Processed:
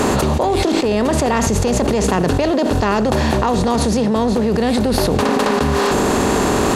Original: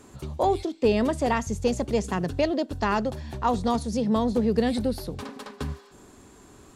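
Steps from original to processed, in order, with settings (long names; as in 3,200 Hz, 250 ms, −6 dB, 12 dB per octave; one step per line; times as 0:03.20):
compressor on every frequency bin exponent 0.6
envelope flattener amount 100%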